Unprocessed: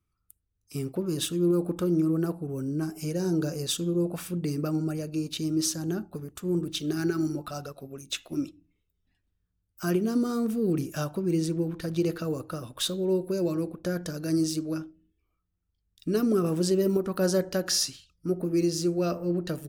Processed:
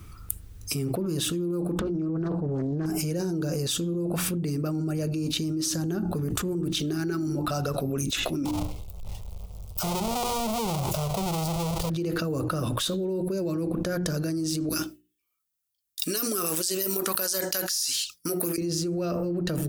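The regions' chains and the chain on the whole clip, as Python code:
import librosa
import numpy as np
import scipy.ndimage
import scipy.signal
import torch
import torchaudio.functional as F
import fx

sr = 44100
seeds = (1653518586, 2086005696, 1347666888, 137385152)

y = fx.chain(x, sr, fx.over_compress(threshold_db=-31.0, ratio=-0.5),
    fx.air_absorb(metres=150.0),
    fx.doppler_dist(depth_ms=0.43), at=(1.79, 2.86))
y = fx.chain(y, sr, fx.halfwave_hold(),
    fx.fixed_phaser(hz=700.0, stages=4), at=(8.45, 11.9))
y = fx.chain(y, sr, fx.differentiator(),
    fx.gate_hold(open_db=-58.0, close_db=-62.0, hold_ms=71.0, range_db=-21, attack_ms=1.4, release_ms=100.0), at=(14.69, 18.58))
y = fx.low_shelf(y, sr, hz=190.0, db=4.0)
y = fx.hum_notches(y, sr, base_hz=60, count=6)
y = fx.env_flatten(y, sr, amount_pct=100)
y = F.gain(torch.from_numpy(y), -8.0).numpy()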